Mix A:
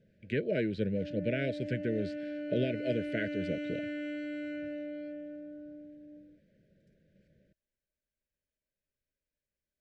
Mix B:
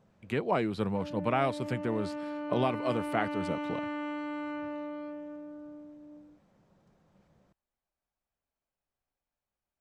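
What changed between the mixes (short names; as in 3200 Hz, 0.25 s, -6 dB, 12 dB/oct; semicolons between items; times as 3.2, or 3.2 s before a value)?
speech: remove LPF 3900 Hz 12 dB/oct; master: remove Chebyshev band-stop 630–1500 Hz, order 5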